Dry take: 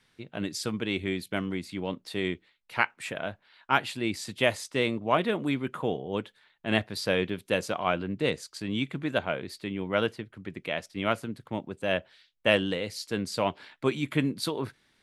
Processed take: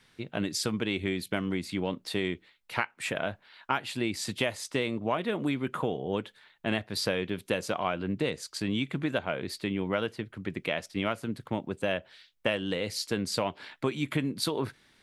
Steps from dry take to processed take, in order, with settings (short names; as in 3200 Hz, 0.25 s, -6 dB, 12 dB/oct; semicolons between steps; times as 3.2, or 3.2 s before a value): compressor 6:1, threshold -30 dBFS, peak gain reduction 13 dB; gain +4.5 dB